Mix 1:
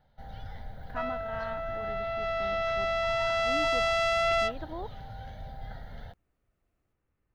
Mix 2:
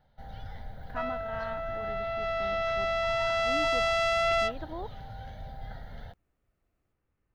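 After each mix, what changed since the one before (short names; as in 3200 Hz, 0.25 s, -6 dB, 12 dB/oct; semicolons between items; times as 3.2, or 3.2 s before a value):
none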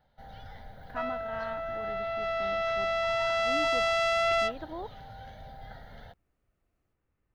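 first sound: add low shelf 170 Hz -7.5 dB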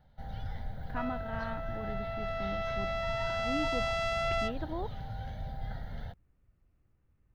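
second sound -6.0 dB; master: add tone controls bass +10 dB, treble 0 dB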